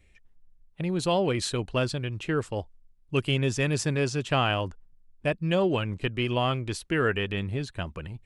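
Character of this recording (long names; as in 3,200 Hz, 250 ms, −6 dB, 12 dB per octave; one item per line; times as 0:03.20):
background noise floor −60 dBFS
spectral slope −5.5 dB per octave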